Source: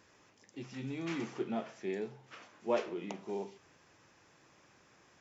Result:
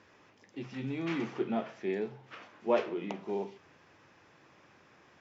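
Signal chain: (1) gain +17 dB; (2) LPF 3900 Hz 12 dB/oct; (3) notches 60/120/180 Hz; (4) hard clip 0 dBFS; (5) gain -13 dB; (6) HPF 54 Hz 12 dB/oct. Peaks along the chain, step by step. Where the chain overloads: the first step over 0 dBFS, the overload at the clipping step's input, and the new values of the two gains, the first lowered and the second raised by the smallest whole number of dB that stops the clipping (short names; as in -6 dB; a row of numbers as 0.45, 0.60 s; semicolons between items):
-2.0, -2.0, -2.0, -2.0, -15.0, -15.5 dBFS; no overload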